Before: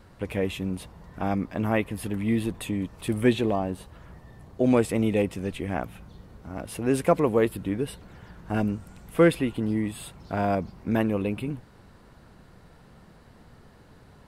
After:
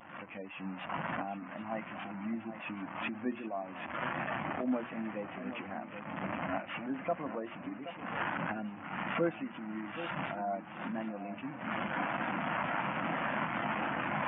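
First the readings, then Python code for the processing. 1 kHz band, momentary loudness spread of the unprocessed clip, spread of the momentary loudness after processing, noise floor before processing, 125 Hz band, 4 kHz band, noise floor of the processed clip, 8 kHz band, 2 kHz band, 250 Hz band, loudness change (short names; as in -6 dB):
-1.5 dB, 15 LU, 8 LU, -53 dBFS, -14.5 dB, -6.0 dB, -47 dBFS, under -35 dB, -0.5 dB, -11.0 dB, -10.5 dB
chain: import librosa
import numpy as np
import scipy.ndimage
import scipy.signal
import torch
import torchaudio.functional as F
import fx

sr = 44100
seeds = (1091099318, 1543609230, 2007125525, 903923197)

y = fx.delta_mod(x, sr, bps=16000, step_db=-25.5)
y = fx.recorder_agc(y, sr, target_db=-16.5, rise_db_per_s=34.0, max_gain_db=30)
y = scipy.signal.sosfilt(scipy.signal.butter(2, 290.0, 'highpass', fs=sr, output='sos'), y)
y = fx.high_shelf(y, sr, hz=2400.0, db=-4.0)
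y = fx.hum_notches(y, sr, base_hz=60, count=7)
y = y + 10.0 ** (-16.0 / 20.0) * np.pad(y, (int(1138 * sr / 1000.0), 0))[:len(y)]
y = fx.spec_gate(y, sr, threshold_db=-25, keep='strong')
y = fx.peak_eq(y, sr, hz=430.0, db=-14.5, octaves=0.53)
y = fx.echo_feedback(y, sr, ms=775, feedback_pct=23, wet_db=-8.0)
y = fx.spectral_expand(y, sr, expansion=1.5)
y = y * librosa.db_to_amplitude(-8.0)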